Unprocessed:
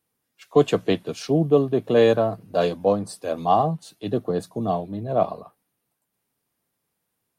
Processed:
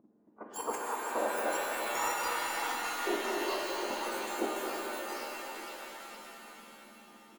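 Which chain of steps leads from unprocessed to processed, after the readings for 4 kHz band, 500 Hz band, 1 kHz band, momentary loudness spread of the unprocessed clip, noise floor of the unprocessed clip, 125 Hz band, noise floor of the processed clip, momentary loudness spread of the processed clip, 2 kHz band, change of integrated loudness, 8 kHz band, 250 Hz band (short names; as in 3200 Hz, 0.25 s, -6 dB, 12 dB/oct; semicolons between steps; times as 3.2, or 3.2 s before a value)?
-3.5 dB, -16.0 dB, -7.5 dB, 9 LU, -78 dBFS, under -35 dB, -61 dBFS, 17 LU, +1.5 dB, -12.0 dB, +4.5 dB, -16.5 dB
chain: spectrum mirrored in octaves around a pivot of 1800 Hz; speakerphone echo 0.38 s, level -13 dB; tremolo saw down 4.1 Hz, depth 50%; dynamic EQ 6400 Hz, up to -6 dB, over -39 dBFS, Q 1.1; on a send: echo with dull and thin repeats by turns 0.235 s, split 1500 Hz, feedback 60%, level -5.5 dB; on the sum: level quantiser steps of 10 dB; in parallel at -5.5 dB: soft clip -36.5 dBFS, distortion -6 dB; on the sum: EQ curve 940 Hz 0 dB, 4000 Hz -23 dB, 6800 Hz -19 dB; shimmer reverb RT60 3.7 s, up +7 st, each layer -2 dB, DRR -0.5 dB; gain +6 dB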